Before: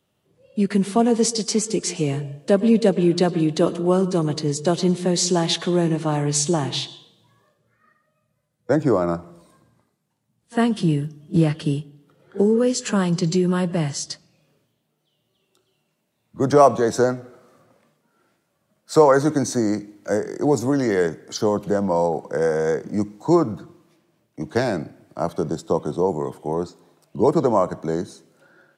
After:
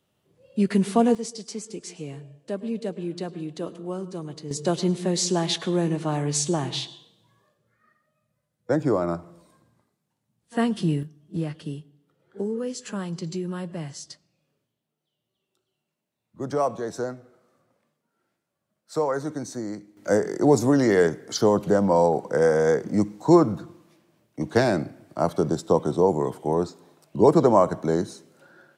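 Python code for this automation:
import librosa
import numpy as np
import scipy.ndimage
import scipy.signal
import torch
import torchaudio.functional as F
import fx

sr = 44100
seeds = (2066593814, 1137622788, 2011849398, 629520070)

y = fx.gain(x, sr, db=fx.steps((0.0, -1.5), (1.15, -13.5), (4.51, -4.0), (11.03, -11.0), (19.97, 1.0)))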